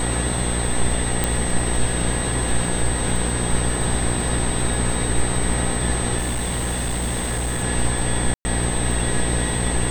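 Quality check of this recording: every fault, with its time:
buzz 60 Hz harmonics 16 -25 dBFS
crackle 100 per s -30 dBFS
whine 8.2 kHz -27 dBFS
1.24 s: pop -5 dBFS
6.18–7.64 s: clipped -20 dBFS
8.34–8.45 s: dropout 110 ms

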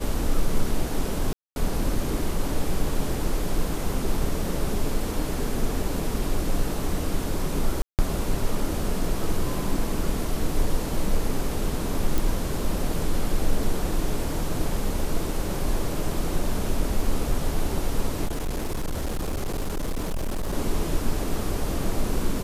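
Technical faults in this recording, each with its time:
1.33–1.56 s: dropout 231 ms
7.82–7.99 s: dropout 168 ms
12.18 s: pop
18.25–20.54 s: clipped -23.5 dBFS

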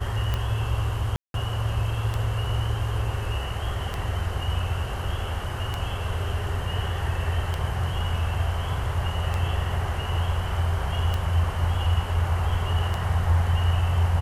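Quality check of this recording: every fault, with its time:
tick 33 1/3 rpm -14 dBFS
1.16–1.34 s: dropout 182 ms

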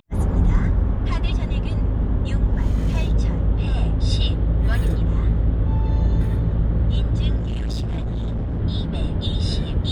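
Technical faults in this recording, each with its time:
7.36–8.60 s: clipped -21.5 dBFS

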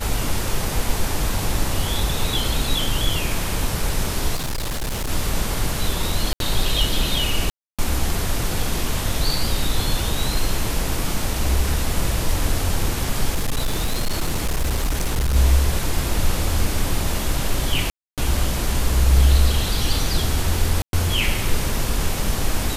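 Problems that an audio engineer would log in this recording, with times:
4.35–5.10 s: clipped -21.5 dBFS
6.33–6.40 s: dropout 72 ms
7.50–7.79 s: dropout 286 ms
13.34–15.36 s: clipped -16.5 dBFS
17.90–18.18 s: dropout 277 ms
20.82–20.93 s: dropout 112 ms

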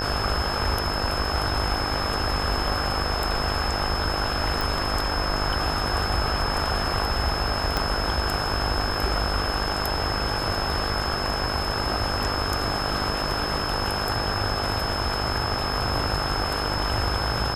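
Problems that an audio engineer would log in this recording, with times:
buzz 50 Hz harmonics 33 -31 dBFS
whine 5.2 kHz -30 dBFS
4.61 s: pop
7.77 s: pop

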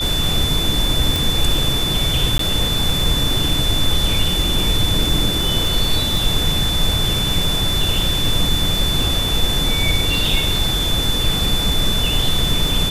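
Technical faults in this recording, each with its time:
crackle 24 per s -20 dBFS
whine 3.5 kHz -20 dBFS
1.16 s: pop
2.38–2.39 s: dropout 13 ms

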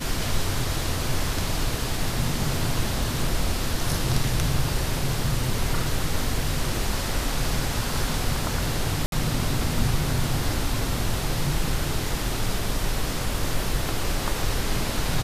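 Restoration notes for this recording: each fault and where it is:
9.06–9.12 s: dropout 62 ms

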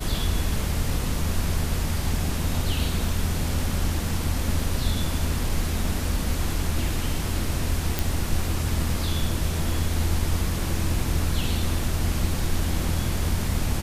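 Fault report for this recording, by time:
7.99 s: pop

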